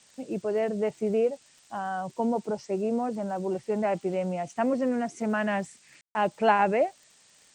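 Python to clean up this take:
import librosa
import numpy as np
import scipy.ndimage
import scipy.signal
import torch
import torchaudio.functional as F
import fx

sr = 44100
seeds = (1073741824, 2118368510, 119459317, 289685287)

y = fx.fix_declick_ar(x, sr, threshold=6.5)
y = fx.fix_ambience(y, sr, seeds[0], print_start_s=7.03, print_end_s=7.53, start_s=6.01, end_s=6.15)
y = fx.noise_reduce(y, sr, print_start_s=7.03, print_end_s=7.53, reduce_db=14.0)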